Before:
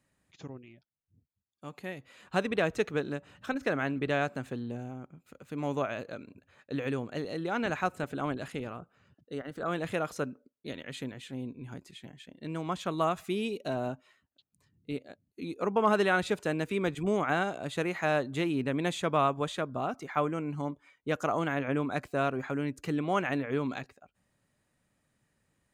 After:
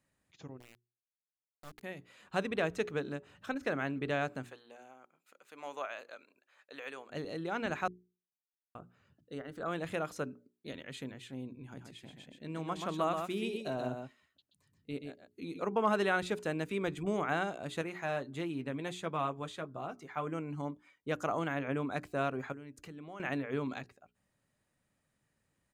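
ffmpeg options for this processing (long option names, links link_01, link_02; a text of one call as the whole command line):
ffmpeg -i in.wav -filter_complex "[0:a]asettb=1/sr,asplit=3[link_01][link_02][link_03];[link_01]atrim=end=0.604[link_04];[link_02]atrim=start=0.6:end=1.83,asetpts=PTS-STARTPTS,afade=type=in:duration=0.004:curve=qsin,afade=type=out:start_time=1.226:duration=0.004:curve=qsin,acrusher=bits=5:dc=4:mix=0:aa=0.000001[link_05];[link_03]atrim=start=1.826[link_06];[link_04][link_05]acrossfade=duration=0.004:curve1=hsin:curve2=qsin[link_07];[link_07][link_06]acrossfade=duration=0.004:curve1=qsin:curve2=hsin,asettb=1/sr,asplit=3[link_08][link_09][link_10];[link_08]atrim=end=4.464[link_11];[link_09]atrim=start=4.46:end=7.1,asetpts=PTS-STARTPTS,afade=type=in:duration=0.004:curve=qsin,afade=type=out:start_time=2.636:duration=0.004:curve=qsin,highpass=710[link_12];[link_10]atrim=start=7.096[link_13];[link_11][link_12]acrossfade=duration=0.004:curve1=hsin:curve2=qsin[link_14];[link_14][link_13]acrossfade=duration=0.004:curve1=qsin:curve2=hsin,asplit=3[link_15][link_16][link_17];[link_15]afade=type=out:start_time=11.76:duration=0.02[link_18];[link_16]aecho=1:1:129:0.531,afade=type=in:start_time=11.76:duration=0.02,afade=type=out:start_time=15.59:duration=0.02[link_19];[link_17]afade=type=in:start_time=15.59:duration=0.02[link_20];[link_18][link_19][link_20]amix=inputs=3:normalize=0,asettb=1/sr,asplit=3[link_21][link_22][link_23];[link_21]atrim=end=17.814[link_24];[link_22]atrim=start=17.81:end=20.27,asetpts=PTS-STARTPTS,afade=type=in:duration=0.004:curve=qsin,afade=type=out:start_time=2.456:duration=0.004:curve=qsin,flanger=delay=5.5:depth=2.8:regen=-50:speed=1.5:shape=triangular[link_25];[link_23]atrim=start=20.266[link_26];[link_24][link_25]acrossfade=duration=0.004:curve1=hsin:curve2=qsin[link_27];[link_27][link_26]acrossfade=duration=0.004:curve1=qsin:curve2=hsin,asettb=1/sr,asplit=3[link_28][link_29][link_30];[link_28]atrim=end=22.524[link_31];[link_29]atrim=start=22.52:end=23.2,asetpts=PTS-STARTPTS,afade=type=in:duration=0.004:curve=qsin,afade=type=out:start_time=0.676:duration=0.004:curve=qsin,acompressor=threshold=-44dB:ratio=3:attack=3.2:release=140:knee=1:detection=peak[link_32];[link_30]atrim=start=23.196[link_33];[link_31][link_32]acrossfade=duration=0.004:curve1=hsin:curve2=qsin[link_34];[link_34][link_33]acrossfade=duration=0.004:curve1=qsin:curve2=hsin,asplit=3[link_35][link_36][link_37];[link_35]atrim=end=7.88,asetpts=PTS-STARTPTS,afade=type=out:start_time=7.876:duration=0.004:curve=hsin[link_38];[link_36]atrim=start=7.88:end=8.75,asetpts=PTS-STARTPTS,volume=0[link_39];[link_37]atrim=start=8.75,asetpts=PTS-STARTPTS,afade=type=in:duration=0.004:curve=hsin[link_40];[link_38][link_39][link_40]concat=n=3:v=0:a=1,bandreject=frequency=60:width_type=h:width=6,bandreject=frequency=120:width_type=h:width=6,bandreject=frequency=180:width_type=h:width=6,bandreject=frequency=240:width_type=h:width=6,bandreject=frequency=300:width_type=h:width=6,bandreject=frequency=360:width_type=h:width=6,bandreject=frequency=420:width_type=h:width=6,volume=-4dB" out.wav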